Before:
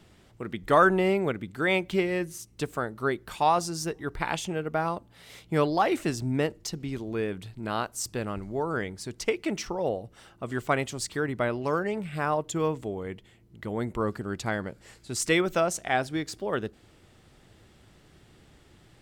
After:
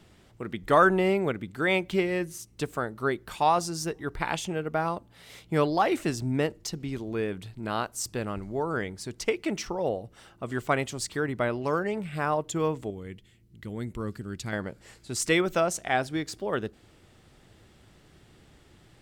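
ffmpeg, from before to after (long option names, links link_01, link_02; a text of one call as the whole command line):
ffmpeg -i in.wav -filter_complex "[0:a]asettb=1/sr,asplit=3[link_01][link_02][link_03];[link_01]atrim=end=12.904[link_04];[link_02]atrim=start=12.9:end=14.53,asetpts=PTS-STARTPTS,afade=type=in:duration=0.004:curve=qsin,afade=type=out:start_time=1.626:duration=0.004:curve=qsin,equalizer=frequency=790:width=0.63:gain=-12.5[link_05];[link_03]atrim=start=14.526[link_06];[link_04][link_05]acrossfade=duration=0.004:curve1=hsin:curve2=qsin[link_07];[link_07][link_06]acrossfade=duration=0.004:curve1=qsin:curve2=hsin" out.wav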